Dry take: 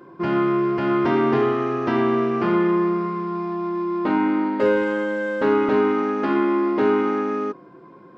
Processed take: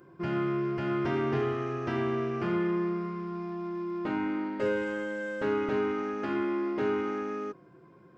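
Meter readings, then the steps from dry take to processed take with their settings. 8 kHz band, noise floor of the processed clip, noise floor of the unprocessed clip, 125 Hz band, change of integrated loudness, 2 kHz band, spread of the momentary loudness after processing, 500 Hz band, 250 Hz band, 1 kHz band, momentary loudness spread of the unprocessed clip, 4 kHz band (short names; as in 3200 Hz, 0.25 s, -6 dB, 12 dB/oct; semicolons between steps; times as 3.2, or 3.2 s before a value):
n/a, -56 dBFS, -46 dBFS, -4.5 dB, -10.0 dB, -8.5 dB, 7 LU, -10.0 dB, -10.0 dB, -12.0 dB, 7 LU, -7.5 dB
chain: ten-band EQ 250 Hz -11 dB, 500 Hz -6 dB, 1000 Hz -11 dB, 2000 Hz -4 dB, 4000 Hz -8 dB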